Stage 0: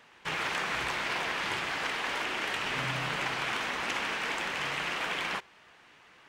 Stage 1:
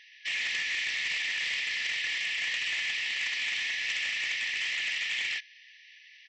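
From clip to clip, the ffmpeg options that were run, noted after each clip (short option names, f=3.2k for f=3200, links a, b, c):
-af "afftfilt=real='re*between(b*sr/4096,1700,6200)':imag='im*between(b*sr/4096,1700,6200)':win_size=4096:overlap=0.75,aresample=16000,asoftclip=type=tanh:threshold=-32dB,aresample=44100,volume=6.5dB"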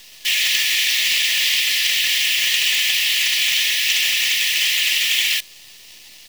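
-af "acontrast=26,acrusher=bits=7:dc=4:mix=0:aa=0.000001,aexciter=amount=2.6:drive=8.2:freq=2.8k,volume=2dB"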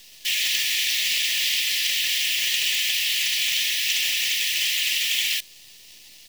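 -af "equalizer=f=1.2k:w=0.73:g=-6,volume=-3.5dB"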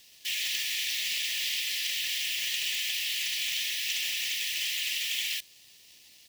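-af "highpass=44,volume=-8dB"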